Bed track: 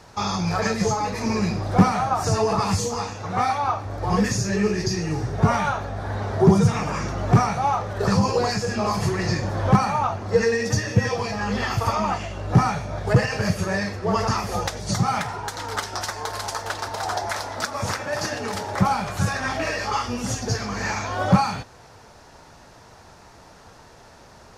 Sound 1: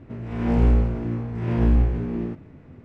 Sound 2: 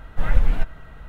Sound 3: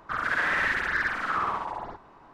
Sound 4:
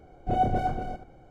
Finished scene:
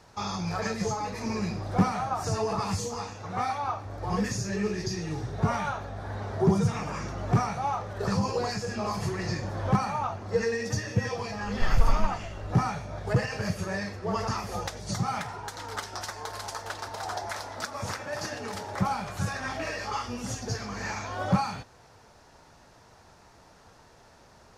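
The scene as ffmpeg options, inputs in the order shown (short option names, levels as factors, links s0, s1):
-filter_complex "[0:a]volume=0.422[s0];[3:a]asuperpass=centerf=3800:order=4:qfactor=4.7,atrim=end=2.33,asetpts=PTS-STARTPTS,volume=0.299,afade=t=in:d=0.004:c=hsin,afade=t=out:st=2.326:d=0.004:c=hsin,adelay=194481S[s1];[2:a]atrim=end=1.08,asetpts=PTS-STARTPTS,volume=0.562,afade=t=in:d=0.004:c=hsin,afade=t=out:st=1.076:d=0.004:c=hsin,adelay=11430[s2];[s0][s1][s2]amix=inputs=3:normalize=0"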